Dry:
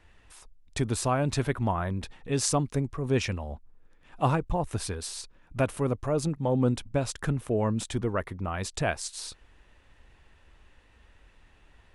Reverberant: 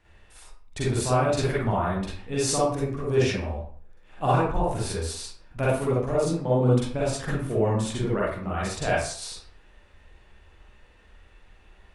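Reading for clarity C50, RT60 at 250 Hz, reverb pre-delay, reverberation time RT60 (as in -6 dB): -2.5 dB, 0.55 s, 39 ms, 0.55 s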